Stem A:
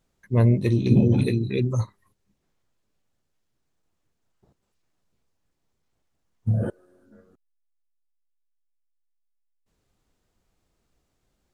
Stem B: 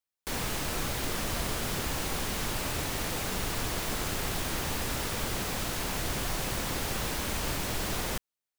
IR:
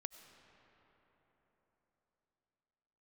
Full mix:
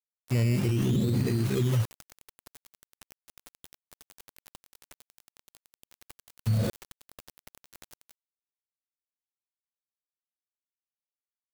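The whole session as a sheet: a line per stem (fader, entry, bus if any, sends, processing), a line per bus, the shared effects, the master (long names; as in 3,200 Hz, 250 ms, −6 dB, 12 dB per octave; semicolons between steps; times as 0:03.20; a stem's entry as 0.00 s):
−4.5 dB, 0.00 s, no send, sample-and-hold swept by an LFO 14×, swing 60% 0.58 Hz; harmonic and percussive parts rebalanced harmonic +8 dB
−13.0 dB, 0.00 s, no send, square-wave tremolo 11 Hz, depth 60%, duty 35%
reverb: not used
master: bit-depth reduction 6 bits, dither none; brickwall limiter −19 dBFS, peak gain reduction 14 dB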